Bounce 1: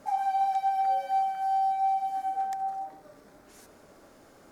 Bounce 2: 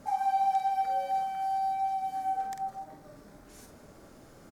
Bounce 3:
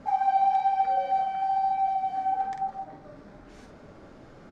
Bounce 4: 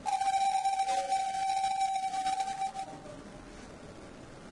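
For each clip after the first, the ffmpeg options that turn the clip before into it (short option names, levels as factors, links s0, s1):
-filter_complex "[0:a]bass=f=250:g=9,treble=f=4000:g=2,asplit=2[s0][s1];[s1]adelay=47,volume=0.501[s2];[s0][s2]amix=inputs=2:normalize=0,volume=0.841"
-af "lowpass=3600,flanger=delay=3.6:depth=8.1:regen=-66:speed=1.1:shape=triangular,volume=2.66"
-af "acrusher=bits=2:mode=log:mix=0:aa=0.000001,acompressor=threshold=0.0126:ratio=1.5" -ar 22050 -c:a libvorbis -b:a 32k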